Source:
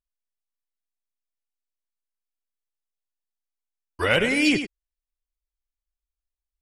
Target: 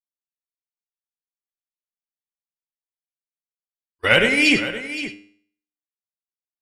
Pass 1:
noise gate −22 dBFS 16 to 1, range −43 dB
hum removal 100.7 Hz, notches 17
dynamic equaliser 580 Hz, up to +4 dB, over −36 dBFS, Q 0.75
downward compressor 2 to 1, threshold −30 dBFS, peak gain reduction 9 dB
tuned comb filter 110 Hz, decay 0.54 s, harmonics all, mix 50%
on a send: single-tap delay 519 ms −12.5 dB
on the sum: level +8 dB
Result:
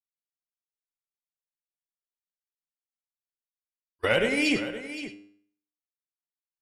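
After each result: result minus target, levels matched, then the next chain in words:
downward compressor: peak gain reduction +9 dB; 500 Hz band +4.0 dB
noise gate −22 dBFS 16 to 1, range −43 dB
hum removal 100.7 Hz, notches 17
dynamic equaliser 580 Hz, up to +4 dB, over −36 dBFS, Q 0.75
tuned comb filter 110 Hz, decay 0.54 s, harmonics all, mix 50%
on a send: single-tap delay 519 ms −12.5 dB
on the sum: level +8 dB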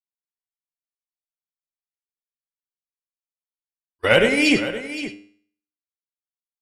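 500 Hz band +4.0 dB
noise gate −22 dBFS 16 to 1, range −43 dB
hum removal 100.7 Hz, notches 17
dynamic equaliser 2,100 Hz, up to +4 dB, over −36 dBFS, Q 0.75
tuned comb filter 110 Hz, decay 0.54 s, harmonics all, mix 50%
on a send: single-tap delay 519 ms −12.5 dB
on the sum: level +8 dB

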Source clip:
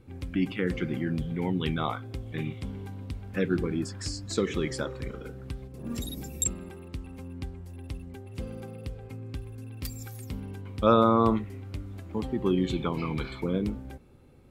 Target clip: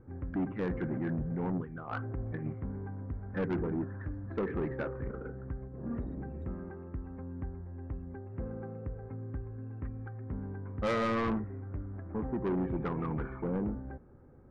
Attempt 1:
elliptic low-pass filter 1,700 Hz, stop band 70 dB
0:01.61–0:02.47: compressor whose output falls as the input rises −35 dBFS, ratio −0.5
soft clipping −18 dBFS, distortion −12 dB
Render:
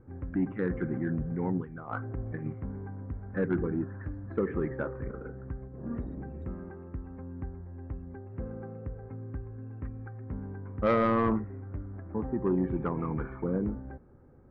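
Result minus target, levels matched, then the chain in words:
soft clipping: distortion −6 dB
elliptic low-pass filter 1,700 Hz, stop band 70 dB
0:01.61–0:02.47: compressor whose output falls as the input rises −35 dBFS, ratio −0.5
soft clipping −27 dBFS, distortion −6 dB

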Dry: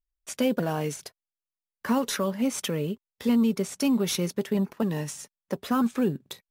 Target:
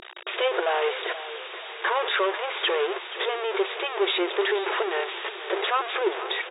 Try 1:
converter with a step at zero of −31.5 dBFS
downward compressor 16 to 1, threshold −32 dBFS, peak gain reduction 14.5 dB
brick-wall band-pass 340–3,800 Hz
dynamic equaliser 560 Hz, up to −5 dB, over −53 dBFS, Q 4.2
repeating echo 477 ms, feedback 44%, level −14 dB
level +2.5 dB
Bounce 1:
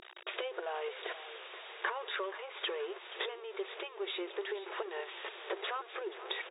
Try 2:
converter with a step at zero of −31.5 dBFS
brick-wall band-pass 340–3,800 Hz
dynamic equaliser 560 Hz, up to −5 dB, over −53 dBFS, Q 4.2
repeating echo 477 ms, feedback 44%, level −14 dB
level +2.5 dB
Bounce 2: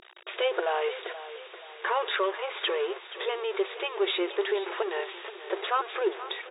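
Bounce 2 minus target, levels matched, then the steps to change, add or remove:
converter with a step at zero: distortion −7 dB
change: converter with a step at zero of −21.5 dBFS

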